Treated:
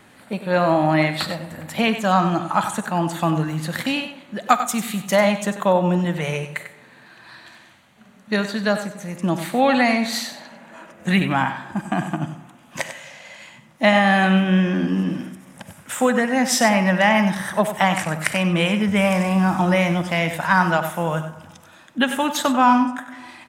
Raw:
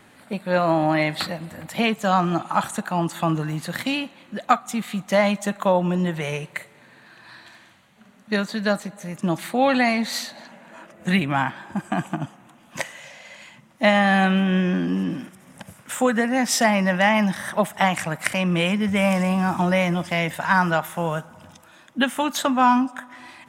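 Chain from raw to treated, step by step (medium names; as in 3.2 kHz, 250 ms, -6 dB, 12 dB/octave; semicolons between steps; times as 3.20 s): 4.46–5.16 s: treble shelf 5.9 kHz +11 dB; delay 96 ms -10.5 dB; reverberation RT60 0.85 s, pre-delay 42 ms, DRR 14 dB; trim +1.5 dB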